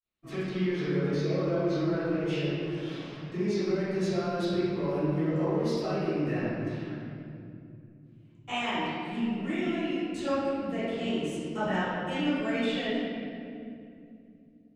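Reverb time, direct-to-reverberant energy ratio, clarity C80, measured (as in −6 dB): 2.5 s, −18.5 dB, −1.5 dB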